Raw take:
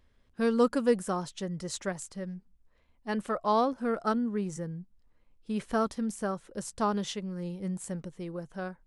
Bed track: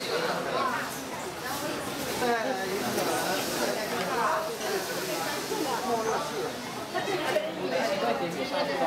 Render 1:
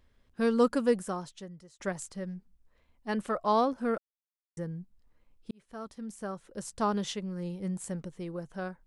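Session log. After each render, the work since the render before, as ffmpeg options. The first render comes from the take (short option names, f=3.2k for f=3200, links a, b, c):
-filter_complex "[0:a]asplit=5[a][b][c][d][e];[a]atrim=end=1.8,asetpts=PTS-STARTPTS,afade=t=out:st=0.81:d=0.99[f];[b]atrim=start=1.8:end=3.98,asetpts=PTS-STARTPTS,afade=t=in:d=0.004:c=hsin,afade=t=out:st=2.176:d=0.004:c=hsin[g];[c]atrim=start=3.98:end=4.57,asetpts=PTS-STARTPTS,volume=0[h];[d]atrim=start=4.57:end=5.51,asetpts=PTS-STARTPTS,afade=t=in:d=0.004:c=hsin,afade=t=out:st=0.936:d=0.004:c=hsin[i];[e]atrim=start=5.51,asetpts=PTS-STARTPTS,afade=t=in:d=1.41[j];[f][g][h][i][j]concat=n=5:v=0:a=1"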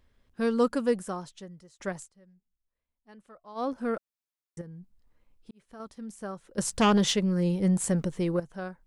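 -filter_complex "[0:a]asettb=1/sr,asplit=3[a][b][c];[a]atrim=end=4.614[d];[b]atrim=start=4.61:end=5.8,asetpts=PTS-STARTPTS,afade=t=in:d=0.004:c=qsin,afade=t=out:st=1.186:d=0.004:c=qsin,acompressor=threshold=-43dB:ratio=3:attack=3.2:release=140:knee=1:detection=peak[e];[c]atrim=start=5.796[f];[d][e]acrossfade=d=0.004:c1=hsin:c2=qsin[g];[g][f]acrossfade=d=0.004:c1=qsin:c2=hsin,asettb=1/sr,asplit=3[h][i][j];[h]atrim=end=6.584[k];[i]atrim=start=6.58:end=8.4,asetpts=PTS-STARTPTS,afade=t=in:d=0.004:c=qsin,afade=t=out:st=1.816:d=0.004:c=qsin,aeval=exprs='0.141*sin(PI/2*2.24*val(0)/0.141)':c=same[l];[j]atrim=start=8.396[m];[k][l]acrossfade=d=0.004:c1=hsin:c2=qsin[n];[n][m]acrossfade=d=0.004:c1=qsin:c2=hsin,asplit=3[o][p][q];[o]atrim=end=2.1,asetpts=PTS-STARTPTS,afade=t=out:st=1.96:d=0.14:silence=0.0944061[r];[p]atrim=start=2.1:end=3.55,asetpts=PTS-STARTPTS,volume=-20.5dB[s];[q]atrim=start=3.55,asetpts=PTS-STARTPTS,afade=t=in:d=0.14:silence=0.0944061[t];[r][s][t]concat=n=3:v=0:a=1"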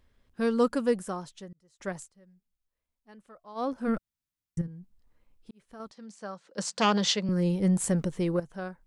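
-filter_complex "[0:a]asplit=3[a][b][c];[a]afade=t=out:st=3.87:d=0.02[d];[b]asubboost=boost=9:cutoff=170,afade=t=in:st=3.87:d=0.02,afade=t=out:st=4.66:d=0.02[e];[c]afade=t=in:st=4.66:d=0.02[f];[d][e][f]amix=inputs=3:normalize=0,asettb=1/sr,asplit=3[g][h][i];[g]atrim=end=5.914[j];[h]atrim=start=5.91:end=7.29,asetpts=PTS-STARTPTS,afade=t=in:d=0.004:c=qsin,afade=t=out:st=1.376:d=0.004:c=qsin,highpass=f=190:w=0.5412,highpass=f=190:w=1.3066,equalizer=f=250:t=q:w=4:g=-8,equalizer=f=370:t=q:w=4:g=-7,equalizer=f=4.5k:t=q:w=4:g=6,lowpass=f=7.5k:w=0.5412,lowpass=f=7.5k:w=1.3066[k];[i]atrim=start=7.286[l];[j][k]acrossfade=d=0.004:c1=hsin:c2=qsin[m];[m][l]acrossfade=d=0.004:c1=qsin:c2=hsin,asplit=2[n][o];[n]atrim=end=1.53,asetpts=PTS-STARTPTS,afade=t=out:st=1.526:d=0.004:c=hsin[p];[o]atrim=start=1.53,asetpts=PTS-STARTPTS,afade=t=in:d=0.41[q];[p][q]concat=n=2:v=0:a=1"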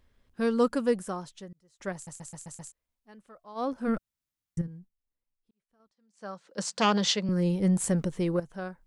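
-filter_complex "[0:a]asplit=9[a][b][c][d][e][f][g][h][i];[a]atrim=end=2.072[j];[b]atrim=start=1.938:end=2.072[k];[c]atrim=start=1.938:end=2.072[l];[d]atrim=start=1.938:end=2.072[m];[e]atrim=start=1.938:end=2.072[n];[f]atrim=start=1.938:end=2.072[o];[g]atrim=start=2.718:end=4.91,asetpts=PTS-STARTPTS,afade=t=out:st=2.042:d=0.15:silence=0.0668344[p];[h]atrim=start=4.91:end=6.13,asetpts=PTS-STARTPTS,volume=-23.5dB[q];[i]atrim=start=6.13,asetpts=PTS-STARTPTS,afade=t=in:d=0.15:silence=0.0668344[r];[j][k]acrossfade=d=0.004:c1=hsin:c2=hsin[s];[s][l]acrossfade=d=0.004:c1=hsin:c2=hsin[t];[t][m]acrossfade=d=0.004:c1=hsin:c2=hsin[u];[u][n]acrossfade=d=0.004:c1=hsin:c2=hsin[v];[v][o]acrossfade=d=0.004:c1=hsin:c2=hsin[w];[p][q][r]concat=n=3:v=0:a=1[x];[w][x]acrossfade=d=0.004:c1=hsin:c2=hsin"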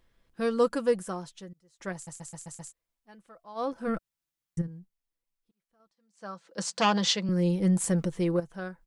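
-af "lowshelf=f=220:g=-3.5,aecho=1:1:6:0.38"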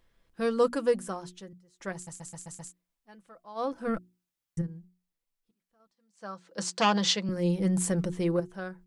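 -af "bandreject=f=60:t=h:w=6,bandreject=f=120:t=h:w=6,bandreject=f=180:t=h:w=6,bandreject=f=240:t=h:w=6,bandreject=f=300:t=h:w=6,bandreject=f=360:t=h:w=6"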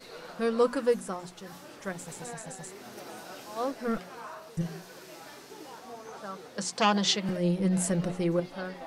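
-filter_complex "[1:a]volume=-16dB[a];[0:a][a]amix=inputs=2:normalize=0"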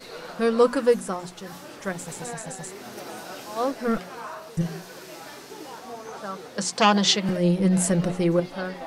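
-af "volume=6dB"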